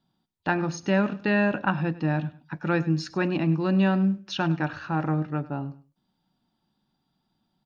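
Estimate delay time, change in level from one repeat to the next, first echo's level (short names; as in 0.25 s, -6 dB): 0.101 s, -12.0 dB, -18.0 dB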